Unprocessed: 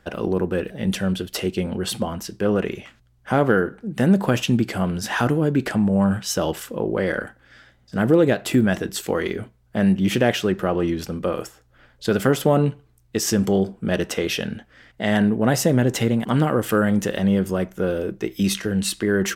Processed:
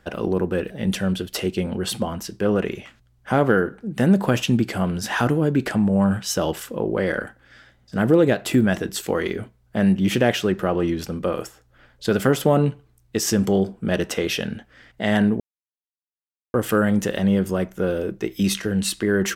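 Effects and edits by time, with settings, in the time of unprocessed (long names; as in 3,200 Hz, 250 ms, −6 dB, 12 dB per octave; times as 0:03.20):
0:15.40–0:16.54: silence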